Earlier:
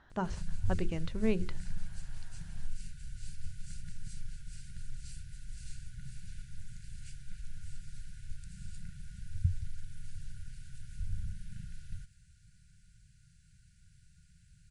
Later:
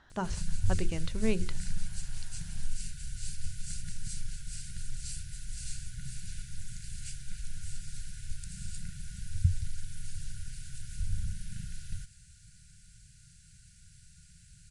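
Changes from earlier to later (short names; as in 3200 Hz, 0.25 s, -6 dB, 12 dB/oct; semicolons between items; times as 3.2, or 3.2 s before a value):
background +4.0 dB; master: add high shelf 3600 Hz +10.5 dB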